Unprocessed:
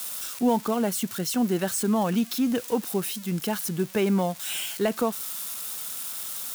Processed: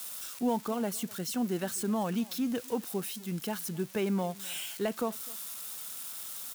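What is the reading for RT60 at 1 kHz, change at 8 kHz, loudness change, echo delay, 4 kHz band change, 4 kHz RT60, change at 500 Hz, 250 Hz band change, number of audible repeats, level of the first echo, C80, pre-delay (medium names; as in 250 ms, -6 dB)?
no reverb, -7.0 dB, -7.0 dB, 254 ms, -7.0 dB, no reverb, -7.0 dB, -7.0 dB, 1, -23.0 dB, no reverb, no reverb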